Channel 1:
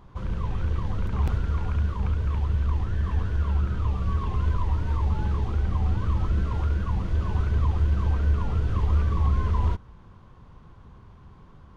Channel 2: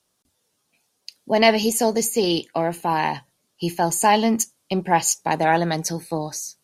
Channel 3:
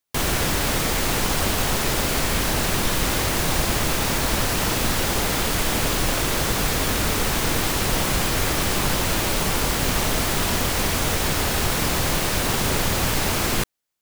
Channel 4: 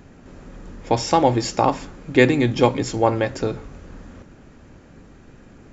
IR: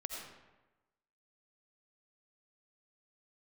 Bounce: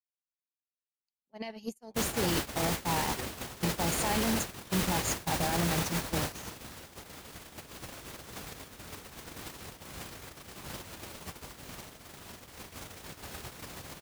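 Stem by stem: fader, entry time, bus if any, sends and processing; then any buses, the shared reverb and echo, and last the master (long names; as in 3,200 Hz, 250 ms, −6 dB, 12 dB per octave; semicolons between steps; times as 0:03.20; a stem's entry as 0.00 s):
−15.0 dB, 1.75 s, no send, high-pass filter 79 Hz 12 dB per octave; parametric band 250 Hz −12.5 dB 1.7 octaves
−3.5 dB, 0.00 s, no send, parametric band 180 Hz +9.5 dB 0.42 octaves; brickwall limiter −13 dBFS, peak gain reduction 9.5 dB
+2.0 dB, 1.80 s, no send, high-pass filter 57 Hz 12 dB per octave; brickwall limiter −17.5 dBFS, peak gain reduction 7.5 dB
−17.5 dB, 1.00 s, no send, no processing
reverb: not used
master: noise gate −21 dBFS, range −51 dB; brickwall limiter −19.5 dBFS, peak gain reduction 8.5 dB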